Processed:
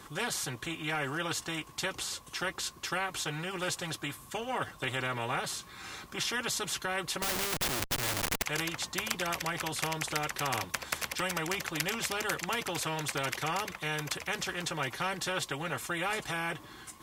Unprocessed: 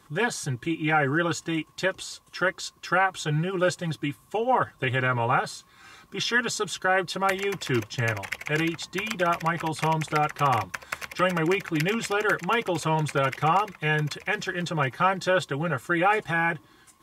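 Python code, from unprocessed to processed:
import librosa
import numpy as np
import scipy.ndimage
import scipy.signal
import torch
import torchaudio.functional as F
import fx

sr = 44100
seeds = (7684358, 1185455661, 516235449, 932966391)

y = fx.schmitt(x, sr, flips_db=-34.5, at=(7.22, 8.43))
y = fx.spectral_comp(y, sr, ratio=2.0)
y = F.gain(torch.from_numpy(y), -1.5).numpy()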